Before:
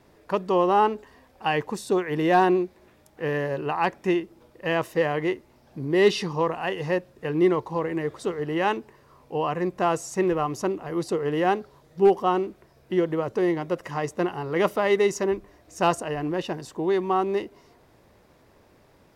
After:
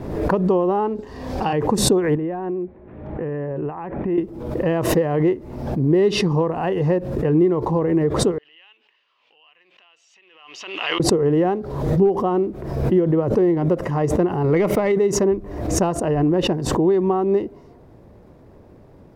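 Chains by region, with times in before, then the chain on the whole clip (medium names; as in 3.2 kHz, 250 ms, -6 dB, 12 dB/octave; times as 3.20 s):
0.95–1.53 s: peaking EQ 5 kHz +11 dB 1.4 oct + doubling 36 ms -3 dB
2.15–4.18 s: low-pass 2.6 kHz 24 dB/octave + compression 10:1, threshold -32 dBFS
8.38–11.00 s: compression 12:1, threshold -38 dBFS + resonant high-pass 2.9 kHz, resonance Q 5.4 + distance through air 190 m
14.44–14.92 s: peaking EQ 2.2 kHz +12.5 dB 0.35 oct + waveshaping leveller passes 1
whole clip: compression 6:1, threshold -24 dBFS; tilt shelf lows +9.5 dB; swell ahead of each attack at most 51 dB/s; trim +3.5 dB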